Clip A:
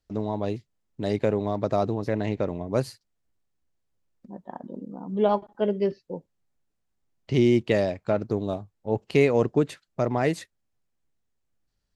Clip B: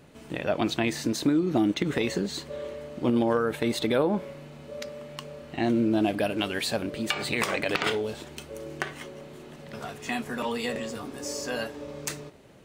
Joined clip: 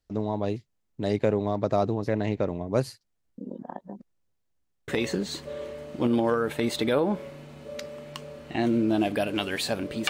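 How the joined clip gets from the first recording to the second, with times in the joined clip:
clip A
3.38–4.88 reverse
4.88 switch to clip B from 1.91 s

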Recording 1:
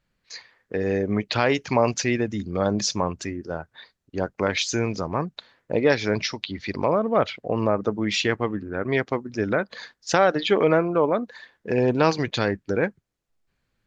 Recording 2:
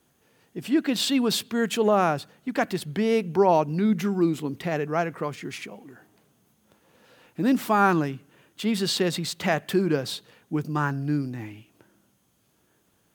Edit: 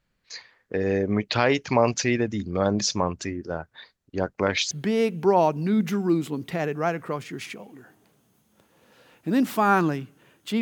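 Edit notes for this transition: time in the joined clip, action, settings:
recording 1
4.71 switch to recording 2 from 2.83 s

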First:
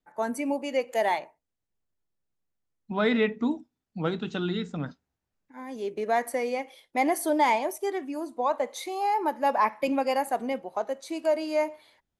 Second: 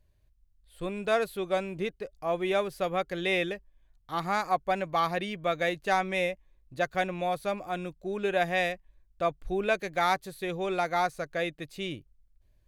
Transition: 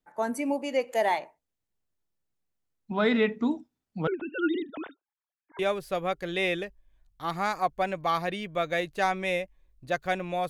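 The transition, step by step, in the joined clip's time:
first
4.07–5.59 sine-wave speech
5.59 switch to second from 2.48 s

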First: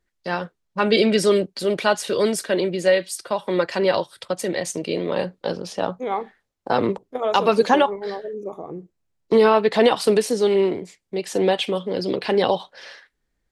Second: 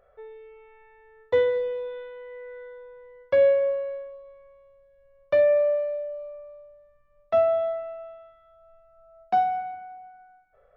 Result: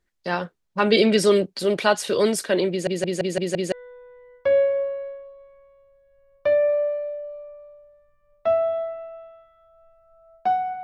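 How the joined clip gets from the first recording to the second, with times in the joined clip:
first
2.7 stutter in place 0.17 s, 6 plays
3.72 switch to second from 2.59 s

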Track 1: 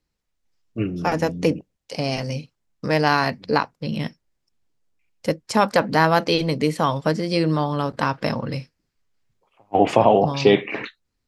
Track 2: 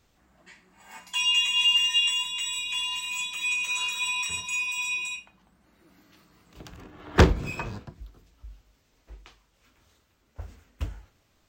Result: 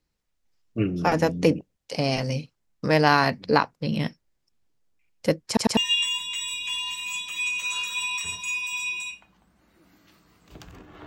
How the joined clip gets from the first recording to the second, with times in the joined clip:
track 1
5.47 stutter in place 0.10 s, 3 plays
5.77 switch to track 2 from 1.82 s

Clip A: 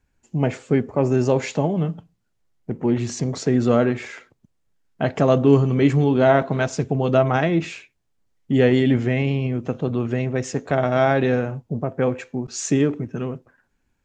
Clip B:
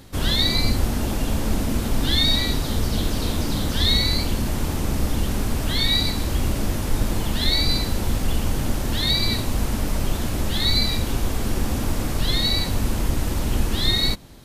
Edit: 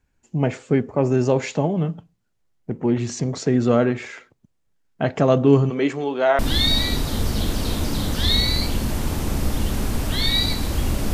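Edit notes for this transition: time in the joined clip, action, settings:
clip A
5.69–6.39 HPF 270 Hz -> 640 Hz
6.39 switch to clip B from 1.96 s

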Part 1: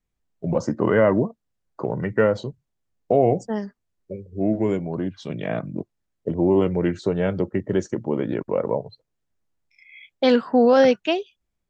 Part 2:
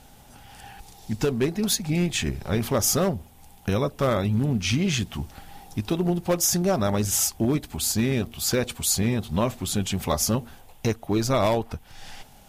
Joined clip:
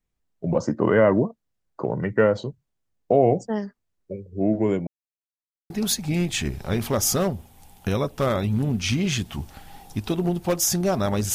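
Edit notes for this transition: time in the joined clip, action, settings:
part 1
4.87–5.7 mute
5.7 switch to part 2 from 1.51 s

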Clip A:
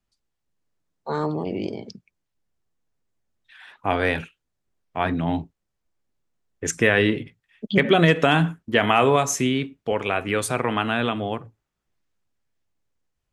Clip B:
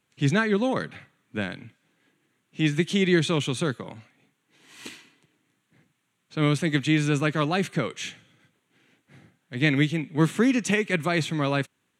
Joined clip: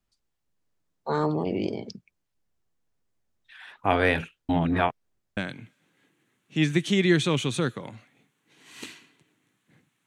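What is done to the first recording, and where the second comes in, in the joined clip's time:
clip A
4.49–5.37 reverse
5.37 switch to clip B from 1.4 s

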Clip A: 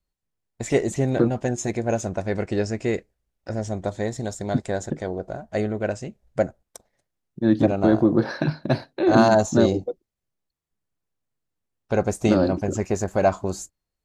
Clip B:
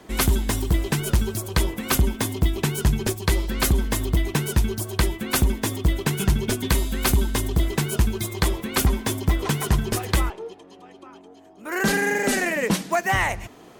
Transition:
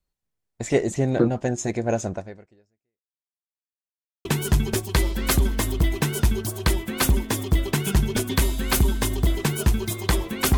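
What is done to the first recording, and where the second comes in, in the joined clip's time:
clip A
2.13–3.4 fade out exponential
3.4–4.25 mute
4.25 switch to clip B from 2.58 s

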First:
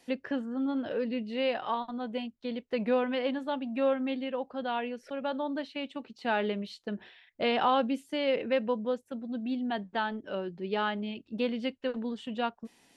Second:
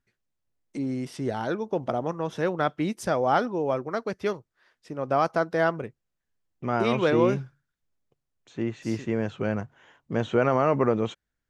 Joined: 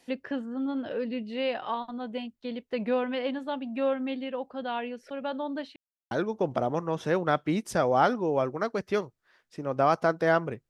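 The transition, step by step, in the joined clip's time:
first
5.76–6.11 mute
6.11 switch to second from 1.43 s

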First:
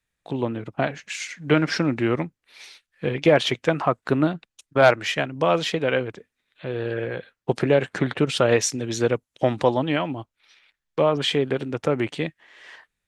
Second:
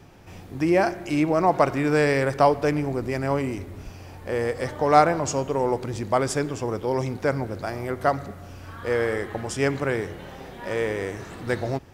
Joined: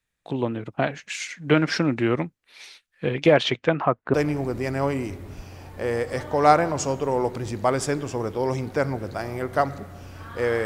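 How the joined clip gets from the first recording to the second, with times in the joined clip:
first
3.34–4.14 LPF 7200 Hz -> 1300 Hz
4.14 switch to second from 2.62 s

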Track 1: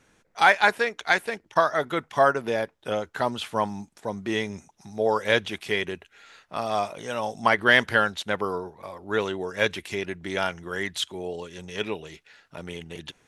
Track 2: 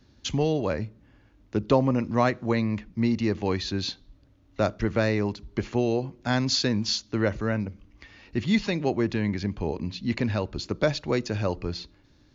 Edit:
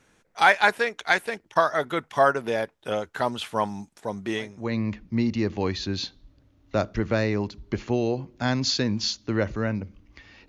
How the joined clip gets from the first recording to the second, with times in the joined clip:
track 1
4.54 switch to track 2 from 2.39 s, crossfade 0.50 s quadratic

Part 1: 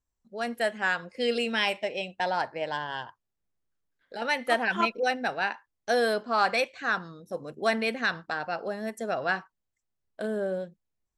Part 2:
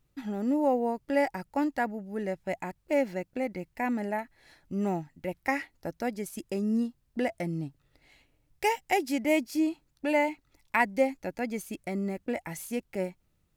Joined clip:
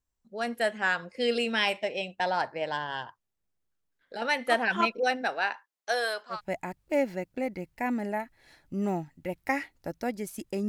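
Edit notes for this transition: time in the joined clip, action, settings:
part 1
5.21–6.41 HPF 260 Hz -> 1200 Hz
6.35 switch to part 2 from 2.34 s, crossfade 0.12 s

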